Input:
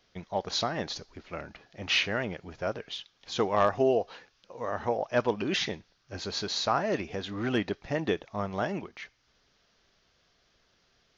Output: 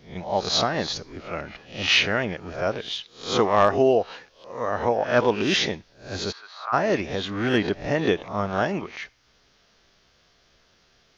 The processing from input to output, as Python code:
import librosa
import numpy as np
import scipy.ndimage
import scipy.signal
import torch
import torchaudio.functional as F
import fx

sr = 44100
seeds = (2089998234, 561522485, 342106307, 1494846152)

y = fx.spec_swells(x, sr, rise_s=0.41)
y = fx.ladder_bandpass(y, sr, hz=1400.0, resonance_pct=50, at=(6.31, 6.72), fade=0.02)
y = y * librosa.db_to_amplitude(5.5)